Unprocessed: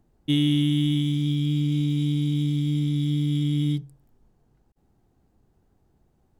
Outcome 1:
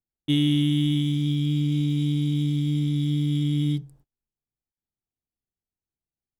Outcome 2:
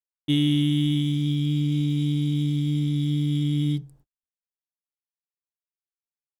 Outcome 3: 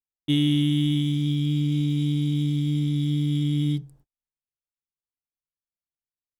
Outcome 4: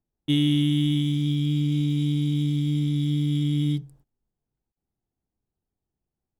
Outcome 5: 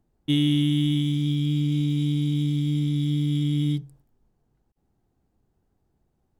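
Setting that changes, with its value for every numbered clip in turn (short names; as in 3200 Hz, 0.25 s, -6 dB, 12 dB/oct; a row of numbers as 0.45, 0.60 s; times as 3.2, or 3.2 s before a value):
gate, range: -33, -60, -46, -21, -6 dB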